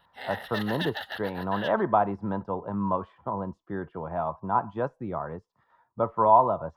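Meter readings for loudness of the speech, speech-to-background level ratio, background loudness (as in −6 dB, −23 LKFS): −28.0 LKFS, 8.5 dB, −36.5 LKFS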